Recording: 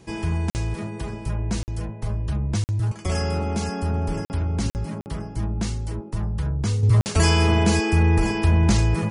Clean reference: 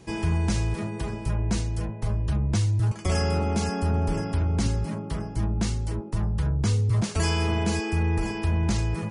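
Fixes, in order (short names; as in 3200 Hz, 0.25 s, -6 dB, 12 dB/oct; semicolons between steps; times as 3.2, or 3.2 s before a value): interpolate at 0.5/1.63/2.64/4.25/4.7/5.01/7.01, 49 ms; gain 0 dB, from 6.83 s -6.5 dB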